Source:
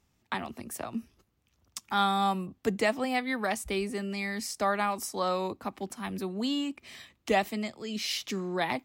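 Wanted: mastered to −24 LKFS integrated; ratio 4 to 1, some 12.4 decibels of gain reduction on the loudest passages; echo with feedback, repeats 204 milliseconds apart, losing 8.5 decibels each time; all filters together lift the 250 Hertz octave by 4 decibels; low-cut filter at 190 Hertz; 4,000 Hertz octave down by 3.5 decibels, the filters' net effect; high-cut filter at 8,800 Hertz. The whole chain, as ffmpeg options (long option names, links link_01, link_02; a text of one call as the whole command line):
ffmpeg -i in.wav -af "highpass=190,lowpass=8800,equalizer=frequency=250:width_type=o:gain=7,equalizer=frequency=4000:width_type=o:gain=-4.5,acompressor=threshold=-35dB:ratio=4,aecho=1:1:204|408|612|816:0.376|0.143|0.0543|0.0206,volume=13.5dB" out.wav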